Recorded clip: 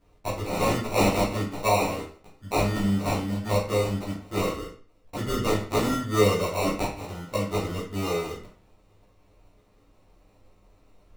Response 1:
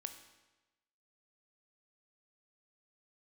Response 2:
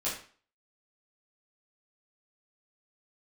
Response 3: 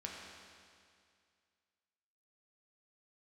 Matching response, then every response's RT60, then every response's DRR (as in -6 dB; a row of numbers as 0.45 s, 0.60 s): 2; 1.1 s, 0.45 s, 2.2 s; 7.5 dB, -9.0 dB, -2.5 dB